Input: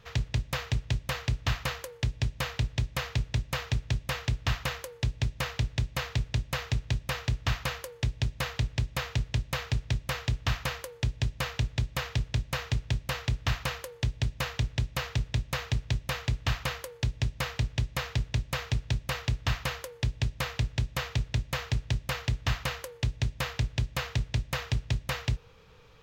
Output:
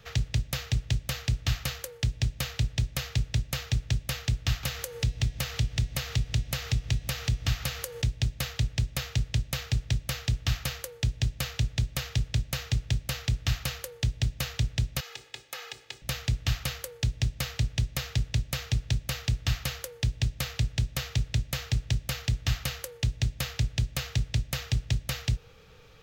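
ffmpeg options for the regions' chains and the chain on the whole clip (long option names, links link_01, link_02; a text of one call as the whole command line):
ffmpeg -i in.wav -filter_complex "[0:a]asettb=1/sr,asplit=3[link_01][link_02][link_03];[link_01]atrim=end=4.634[link_04];[link_02]atrim=start=4.63:end=8.02,asetpts=PTS-STARTPTS,afade=type=in:duration=0.004:curve=qsin,afade=type=out:start_time=3.386:duration=0.004:curve=qsin,acompressor=mode=upward:threshold=-29dB:ratio=2.5:attack=3.2:release=140:knee=2.83:detection=peak,bandreject=frequency=240.1:width_type=h:width=4,bandreject=frequency=480.2:width_type=h:width=4,bandreject=frequency=720.3:width_type=h:width=4,bandreject=frequency=960.4:width_type=h:width=4,bandreject=frequency=1200.5:width_type=h:width=4,bandreject=frequency=1440.6:width_type=h:width=4,bandreject=frequency=1680.7:width_type=h:width=4,bandreject=frequency=1920.8:width_type=h:width=4,bandreject=frequency=2160.9:width_type=h:width=4,bandreject=frequency=2401:width_type=h:width=4,bandreject=frequency=2641.1:width_type=h:width=4,bandreject=frequency=2881.2:width_type=h:width=4,bandreject=frequency=3121.3:width_type=h:width=4,bandreject=frequency=3361.4:width_type=h:width=4,bandreject=frequency=3601.5:width_type=h:width=4,bandreject=frequency=3841.6:width_type=h:width=4,bandreject=frequency=4081.7:width_type=h:width=4,bandreject=frequency=4321.8:width_type=h:width=4,bandreject=frequency=4561.9:width_type=h:width=4,bandreject=frequency=4802:width_type=h:width=4,bandreject=frequency=5042.1:width_type=h:width=4,bandreject=frequency=5282.2:width_type=h:width=4,bandreject=frequency=5522.3:width_type=h:width=4,bandreject=frequency=5762.4:width_type=h:width=4,bandreject=frequency=6002.5:width_type=h:width=4,bandreject=frequency=6242.6:width_type=h:width=4,bandreject=frequency=6482.7:width_type=h:width=4,bandreject=frequency=6722.8:width_type=h:width=4[link_05];[link_03]atrim=start=8.016[link_06];[link_04][link_05]acrossfade=duration=0.004:curve1=hsin:curve2=qsin[link_07];[link_07][link_06]acrossfade=duration=0.004:curve1=qsin:curve2=hsin,asettb=1/sr,asplit=3[link_08][link_09][link_10];[link_08]atrim=end=15.004[link_11];[link_09]atrim=start=15:end=16.02,asetpts=PTS-STARTPTS,afade=type=in:duration=0.004:curve=qsin,afade=type=out:start_time=1.016:duration=0.004:curve=qsin,highpass=470,acompressor=threshold=-44dB:ratio=2:attack=3.2:release=140:knee=1:detection=peak,aecho=1:1:2.4:0.6,atrim=end_sample=44982[link_12];[link_10]atrim=start=16.016[link_13];[link_11][link_12]acrossfade=duration=0.004:curve1=hsin:curve2=qsin[link_14];[link_14][link_13]acrossfade=duration=0.004:curve1=qsin:curve2=hsin,highshelf=frequency=6200:gain=5.5,bandreject=frequency=1000:width=5.9,acrossover=split=220|3000[link_15][link_16][link_17];[link_16]acompressor=threshold=-40dB:ratio=6[link_18];[link_15][link_18][link_17]amix=inputs=3:normalize=0,volume=2dB" out.wav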